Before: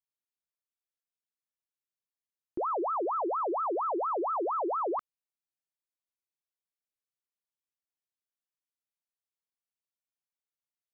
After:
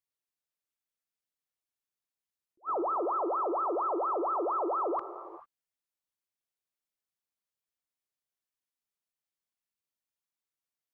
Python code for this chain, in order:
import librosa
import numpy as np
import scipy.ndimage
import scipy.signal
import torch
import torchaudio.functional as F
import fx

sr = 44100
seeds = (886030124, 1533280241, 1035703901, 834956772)

y = fx.rev_gated(x, sr, seeds[0], gate_ms=470, shape='flat', drr_db=10.0)
y = fx.attack_slew(y, sr, db_per_s=490.0)